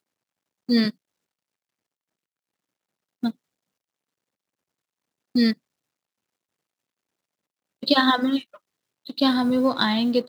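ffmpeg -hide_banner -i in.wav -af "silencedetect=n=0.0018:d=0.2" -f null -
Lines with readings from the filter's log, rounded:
silence_start: 0.00
silence_end: 0.69 | silence_duration: 0.69
silence_start: 0.95
silence_end: 3.23 | silence_duration: 2.28
silence_start: 3.35
silence_end: 5.35 | silence_duration: 2.00
silence_start: 5.58
silence_end: 7.82 | silence_duration: 2.25
silence_start: 8.58
silence_end: 9.05 | silence_duration: 0.47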